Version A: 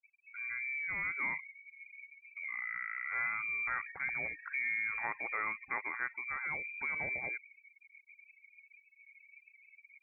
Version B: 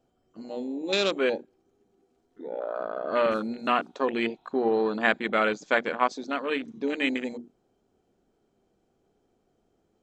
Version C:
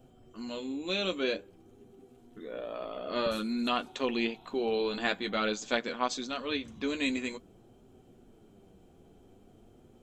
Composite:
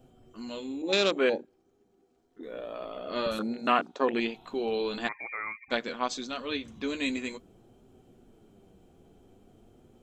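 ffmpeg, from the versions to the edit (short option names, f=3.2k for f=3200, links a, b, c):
-filter_complex "[1:a]asplit=2[a][b];[2:a]asplit=4[c][d][e][f];[c]atrim=end=0.822[g];[a]atrim=start=0.818:end=2.432[h];[d]atrim=start=2.428:end=3.392[i];[b]atrim=start=3.388:end=4.202[j];[e]atrim=start=4.198:end=5.09[k];[0:a]atrim=start=5.07:end=5.72[l];[f]atrim=start=5.7[m];[g][h]acrossfade=d=0.004:c1=hsin:c2=hsin[n];[n][i]acrossfade=d=0.004:c1=hsin:c2=hsin[o];[o][j]acrossfade=d=0.004:c1=hsin:c2=hsin[p];[p][k]acrossfade=d=0.004:c1=hsin:c2=hsin[q];[q][l]acrossfade=d=0.02:c1=tri:c2=tri[r];[r][m]acrossfade=d=0.02:c1=tri:c2=tri"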